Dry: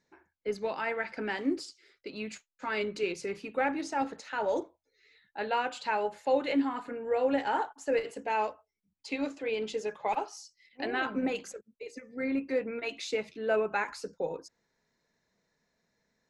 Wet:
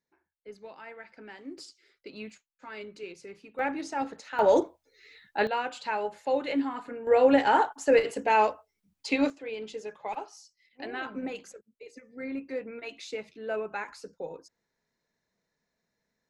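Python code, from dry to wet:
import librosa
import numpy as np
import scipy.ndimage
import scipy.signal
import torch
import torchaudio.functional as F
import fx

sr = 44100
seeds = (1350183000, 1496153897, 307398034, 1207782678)

y = fx.gain(x, sr, db=fx.steps((0.0, -12.5), (1.58, -3.0), (2.3, -9.5), (3.59, -0.5), (4.39, 9.0), (5.47, -0.5), (7.07, 7.5), (9.3, -4.5)))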